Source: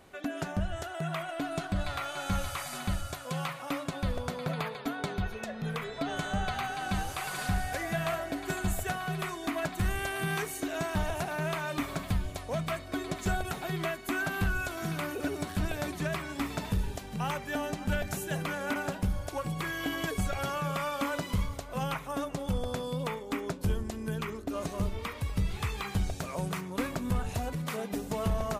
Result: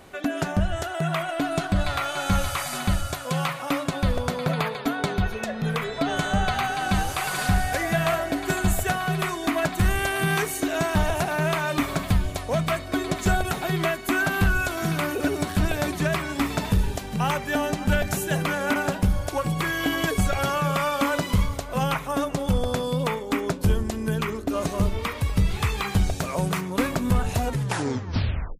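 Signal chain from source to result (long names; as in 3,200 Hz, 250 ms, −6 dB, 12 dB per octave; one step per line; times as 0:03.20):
turntable brake at the end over 1.15 s
level +8.5 dB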